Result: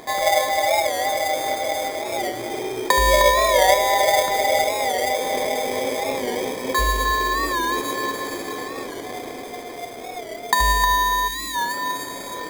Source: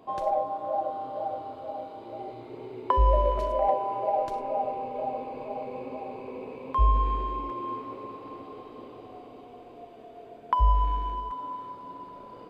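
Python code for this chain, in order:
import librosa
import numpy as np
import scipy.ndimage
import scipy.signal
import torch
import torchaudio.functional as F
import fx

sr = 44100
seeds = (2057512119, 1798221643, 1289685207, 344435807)

p1 = fx.bass_treble(x, sr, bass_db=-8, treble_db=12)
p2 = p1 + 10.0 ** (-11.5 / 20.0) * np.pad(p1, (int(75 * sr / 1000.0), 0))[:len(p1)]
p3 = fx.dynamic_eq(p2, sr, hz=570.0, q=0.96, threshold_db=-38.0, ratio=4.0, max_db=5)
p4 = fx.over_compress(p3, sr, threshold_db=-37.0, ratio=-1.0)
p5 = p3 + F.gain(torch.from_numpy(p4), -2.0).numpy()
p6 = fx.sample_hold(p5, sr, seeds[0], rate_hz=2800.0, jitter_pct=0)
p7 = p6 + fx.echo_single(p6, sr, ms=309, db=-6.0, dry=0)
p8 = fx.spec_box(p7, sr, start_s=11.28, length_s=0.28, low_hz=380.0, high_hz=1800.0, gain_db=-14)
p9 = fx.record_warp(p8, sr, rpm=45.0, depth_cents=100.0)
y = F.gain(torch.from_numpy(p9), 3.5).numpy()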